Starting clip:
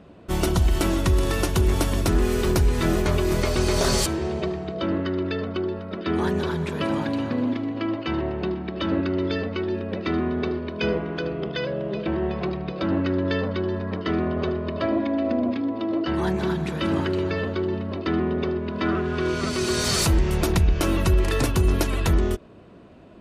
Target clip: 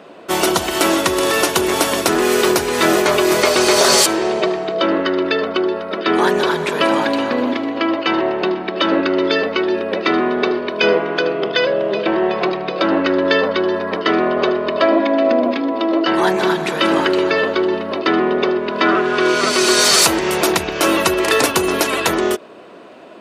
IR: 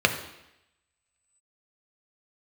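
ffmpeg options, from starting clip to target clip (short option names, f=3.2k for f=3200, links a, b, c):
-af "highpass=430,alimiter=level_in=14.5dB:limit=-1dB:release=50:level=0:latency=1,volume=-1dB"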